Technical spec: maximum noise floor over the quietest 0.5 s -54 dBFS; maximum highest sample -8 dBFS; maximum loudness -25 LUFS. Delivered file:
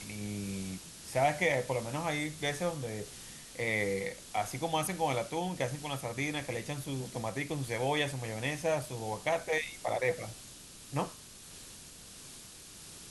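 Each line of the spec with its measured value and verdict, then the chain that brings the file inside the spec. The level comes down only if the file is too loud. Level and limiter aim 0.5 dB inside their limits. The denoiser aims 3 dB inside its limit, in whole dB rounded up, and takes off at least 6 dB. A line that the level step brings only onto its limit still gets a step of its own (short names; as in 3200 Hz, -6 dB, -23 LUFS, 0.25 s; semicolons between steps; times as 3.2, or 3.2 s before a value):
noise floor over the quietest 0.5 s -51 dBFS: fail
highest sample -16.5 dBFS: OK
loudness -34.5 LUFS: OK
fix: denoiser 6 dB, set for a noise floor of -51 dBFS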